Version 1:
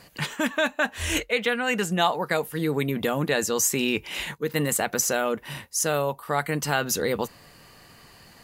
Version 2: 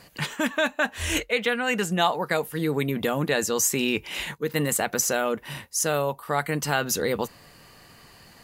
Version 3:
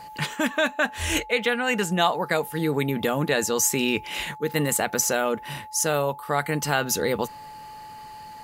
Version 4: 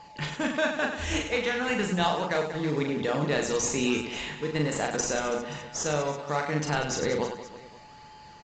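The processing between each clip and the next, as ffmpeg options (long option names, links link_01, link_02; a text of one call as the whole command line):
ffmpeg -i in.wav -af anull out.wav
ffmpeg -i in.wav -af "aeval=exprs='val(0)+0.01*sin(2*PI*860*n/s)':channel_layout=same,volume=1dB" out.wav
ffmpeg -i in.wav -filter_complex "[0:a]asplit=2[link_01][link_02];[link_02]acrusher=samples=21:mix=1:aa=0.000001:lfo=1:lforange=21:lforate=1.2,volume=-10dB[link_03];[link_01][link_03]amix=inputs=2:normalize=0,aecho=1:1:40|100|190|325|527.5:0.631|0.398|0.251|0.158|0.1,aresample=16000,aresample=44100,volume=-7dB" out.wav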